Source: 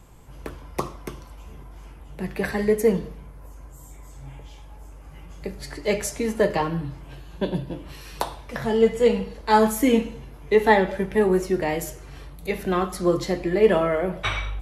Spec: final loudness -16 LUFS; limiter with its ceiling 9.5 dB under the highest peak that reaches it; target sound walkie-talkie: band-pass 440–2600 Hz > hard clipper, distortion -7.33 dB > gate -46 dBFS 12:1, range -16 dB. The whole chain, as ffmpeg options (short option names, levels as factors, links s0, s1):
-af "alimiter=limit=0.237:level=0:latency=1,highpass=440,lowpass=2600,asoftclip=type=hard:threshold=0.0447,agate=range=0.158:threshold=0.00501:ratio=12,volume=7.08"